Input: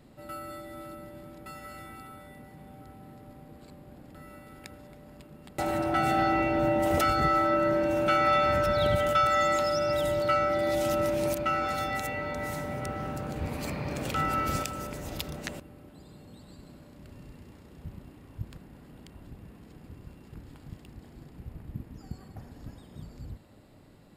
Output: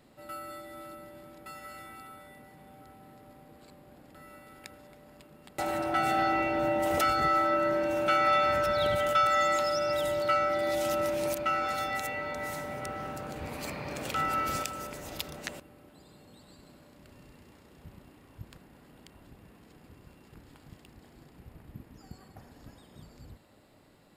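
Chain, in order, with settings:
low-shelf EQ 300 Hz −9.5 dB

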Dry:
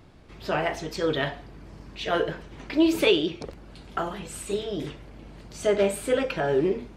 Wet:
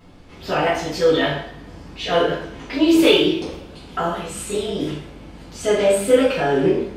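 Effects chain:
coupled-rooms reverb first 0.55 s, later 1.9 s, from −24 dB, DRR −7 dB
level −1 dB

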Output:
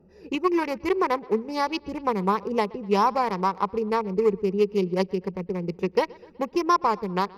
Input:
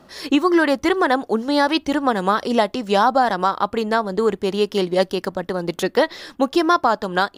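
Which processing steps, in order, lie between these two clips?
adaptive Wiener filter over 41 samples
EQ curve with evenly spaced ripples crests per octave 0.81, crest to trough 12 dB
bucket-brigade delay 124 ms, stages 4,096, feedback 56%, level −24 dB
level −6 dB

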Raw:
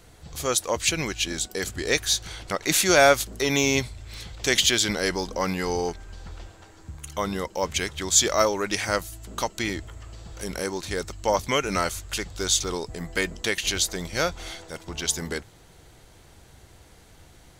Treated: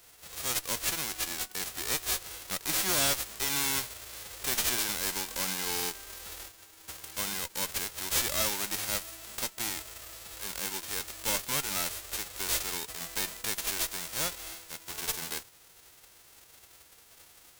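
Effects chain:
spectral envelope flattened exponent 0.1
tube saturation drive 19 dB, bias 0.45
level −3.5 dB

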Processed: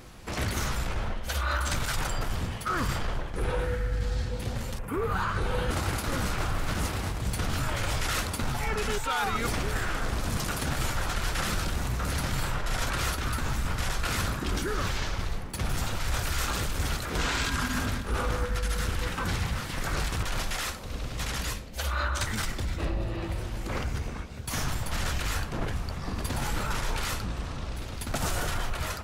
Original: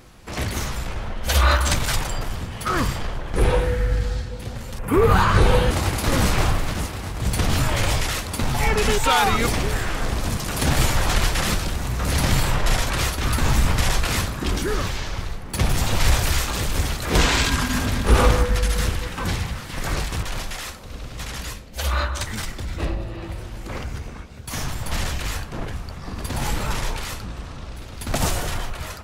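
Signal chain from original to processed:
dynamic equaliser 1,400 Hz, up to +6 dB, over −42 dBFS, Q 3.8
reversed playback
downward compressor 10 to 1, threshold −25 dBFS, peak gain reduction 16 dB
reversed playback

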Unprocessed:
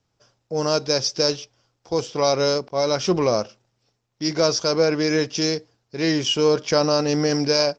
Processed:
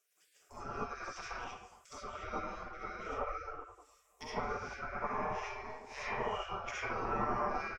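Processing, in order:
0:04.45–0:06.61: spectrum smeared in time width 143 ms
drawn EQ curve 170 Hz 0 dB, 240 Hz +2 dB, 540 Hz −23 dB, 900 Hz +6 dB, 1,600 Hz −14 dB, 2,300 Hz −8 dB, 4,800 Hz −19 dB, 8,200 Hz +9 dB
treble cut that deepens with the level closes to 750 Hz, closed at −27.5 dBFS
comb and all-pass reverb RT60 1 s, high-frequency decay 0.5×, pre-delay 25 ms, DRR −7.5 dB
dynamic equaliser 1,100 Hz, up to +7 dB, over −40 dBFS, Q 1.5
gate on every frequency bin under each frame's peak −25 dB weak
comb filter 6.8 ms, depth 36%
level +5 dB

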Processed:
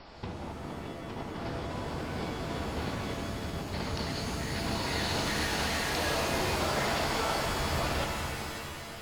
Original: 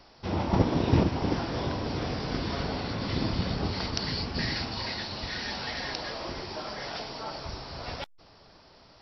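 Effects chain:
low-pass filter 3,700 Hz 12 dB per octave
compressor whose output falls as the input rises −38 dBFS, ratio −1
reverb with rising layers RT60 2.4 s, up +7 semitones, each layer −2 dB, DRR 2.5 dB

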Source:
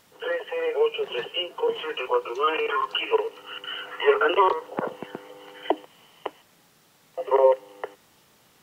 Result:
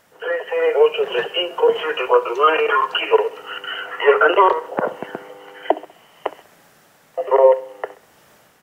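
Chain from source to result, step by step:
graphic EQ with 15 bands 630 Hz +7 dB, 1,600 Hz +6 dB, 4,000 Hz −4 dB
automatic gain control gain up to 7.5 dB
repeating echo 65 ms, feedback 43%, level −18 dB

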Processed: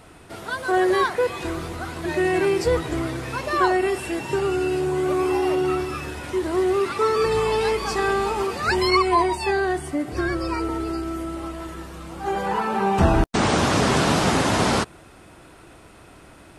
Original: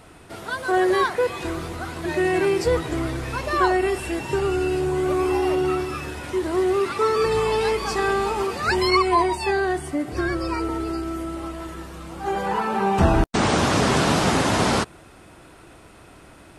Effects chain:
0:03.01–0:05.69: high-pass filter 94 Hz 12 dB per octave

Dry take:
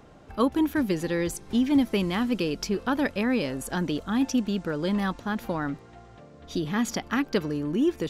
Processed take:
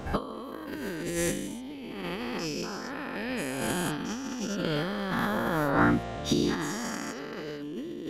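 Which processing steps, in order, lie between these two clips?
every bin's largest magnitude spread in time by 480 ms
compressor whose output falls as the input rises −26 dBFS, ratio −0.5
level −3 dB

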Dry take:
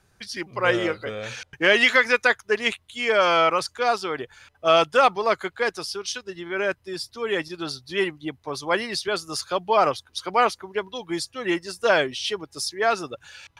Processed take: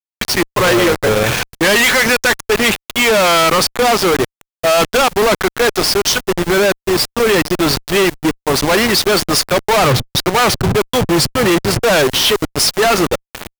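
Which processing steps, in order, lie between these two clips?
hold until the input has moved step −32.5 dBFS
0:09.78–0:11.83: parametric band 120 Hz +14 dB 0.93 octaves
fuzz pedal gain 44 dB, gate −37 dBFS
level +3 dB

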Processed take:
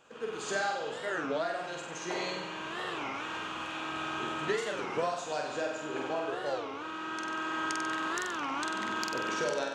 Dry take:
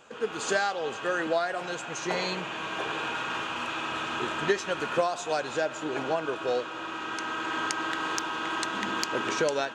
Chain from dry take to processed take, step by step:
flutter between parallel walls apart 8.1 metres, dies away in 0.83 s
wow of a warped record 33 1/3 rpm, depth 250 cents
level −7.5 dB

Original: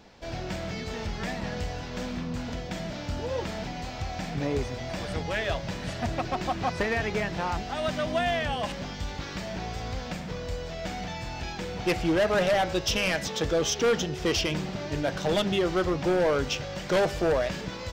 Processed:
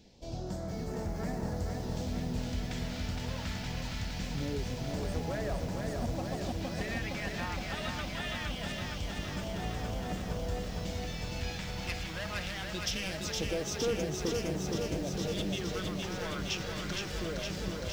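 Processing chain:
downward compressor, threshold −27 dBFS, peak gain reduction 6 dB
all-pass phaser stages 2, 0.23 Hz, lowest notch 370–3,200 Hz
feedback echo at a low word length 464 ms, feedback 80%, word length 9 bits, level −3.5 dB
level −3.5 dB

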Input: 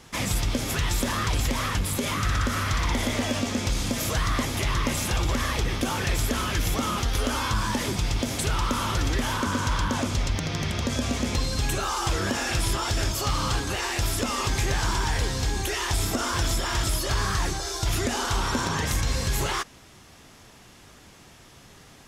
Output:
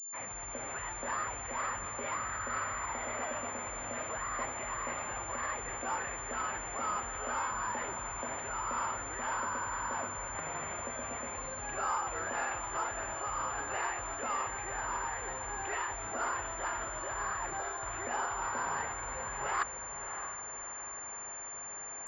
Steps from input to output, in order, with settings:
fade in at the beginning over 0.87 s
high-shelf EQ 2,500 Hz −9 dB
reversed playback
downward compressor 6 to 1, threshold −35 dBFS, peak gain reduction 13.5 dB
reversed playback
three-way crossover with the lows and the highs turned down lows −21 dB, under 550 Hz, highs −22 dB, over 2,600 Hz
feedback delay with all-pass diffusion 630 ms, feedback 48%, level −8.5 dB
switching amplifier with a slow clock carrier 7,200 Hz
level +7.5 dB

